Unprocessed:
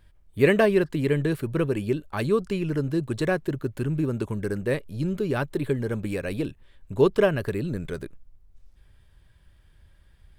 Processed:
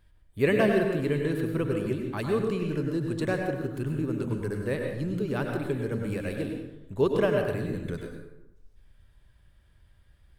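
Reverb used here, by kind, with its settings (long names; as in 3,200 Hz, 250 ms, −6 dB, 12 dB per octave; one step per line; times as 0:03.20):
dense smooth reverb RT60 0.88 s, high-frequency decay 0.6×, pre-delay 85 ms, DRR 2 dB
level −5 dB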